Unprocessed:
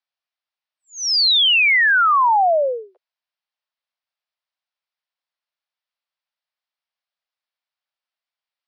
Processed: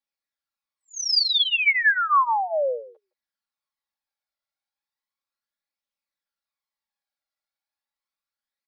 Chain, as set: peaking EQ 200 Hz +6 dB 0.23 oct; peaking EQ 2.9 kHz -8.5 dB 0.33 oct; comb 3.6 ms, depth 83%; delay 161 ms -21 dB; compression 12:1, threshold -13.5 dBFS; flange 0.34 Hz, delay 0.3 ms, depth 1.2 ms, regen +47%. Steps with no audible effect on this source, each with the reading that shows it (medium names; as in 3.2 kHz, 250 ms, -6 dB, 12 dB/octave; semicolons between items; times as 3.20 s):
peaking EQ 200 Hz: input has nothing below 400 Hz